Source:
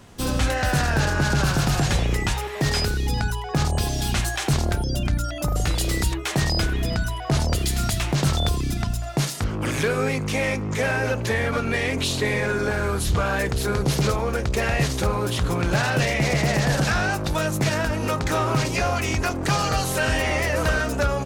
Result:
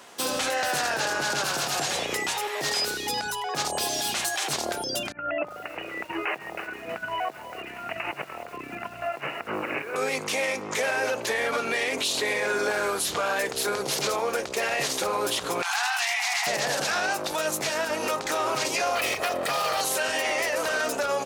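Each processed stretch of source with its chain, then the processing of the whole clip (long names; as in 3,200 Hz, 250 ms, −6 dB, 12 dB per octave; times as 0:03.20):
0:05.12–0:09.96: Chebyshev low-pass filter 2,900 Hz, order 10 + compressor whose output falls as the input rises −28 dBFS, ratio −0.5 + feedback echo at a low word length 318 ms, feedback 55%, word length 7 bits, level −15 dB
0:15.62–0:16.47: linear-phase brick-wall high-pass 690 Hz + envelope flattener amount 50%
0:18.95–0:19.81: lower of the sound and its delayed copy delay 1.6 ms + parametric band 6,700 Hz −9 dB 0.86 octaves + envelope flattener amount 50%
whole clip: high-pass filter 520 Hz 12 dB per octave; dynamic equaliser 1,500 Hz, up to −4 dB, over −36 dBFS, Q 0.85; brickwall limiter −21.5 dBFS; level +4.5 dB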